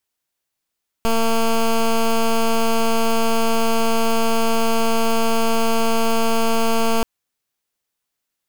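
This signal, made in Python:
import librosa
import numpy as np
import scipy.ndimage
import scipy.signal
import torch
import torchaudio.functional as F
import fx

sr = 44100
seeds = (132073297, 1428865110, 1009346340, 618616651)

y = fx.pulse(sr, length_s=5.98, hz=227.0, level_db=-16.5, duty_pct=12)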